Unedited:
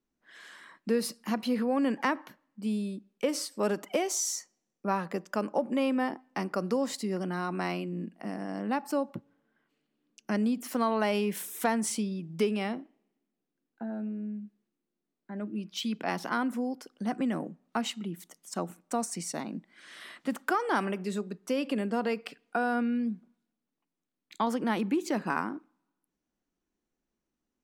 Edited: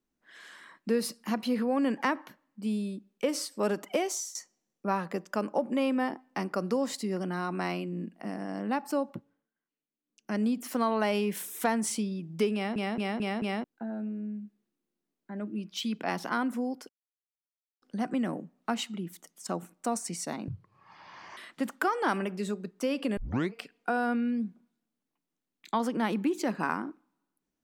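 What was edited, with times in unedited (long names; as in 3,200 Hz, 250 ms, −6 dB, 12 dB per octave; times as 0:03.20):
0:04.06–0:04.35: fade out, to −18 dB
0:09.11–0:10.44: duck −18 dB, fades 0.39 s
0:12.54: stutter in place 0.22 s, 5 plays
0:16.89: splice in silence 0.93 s
0:19.55–0:20.04: play speed 55%
0:21.84: tape start 0.36 s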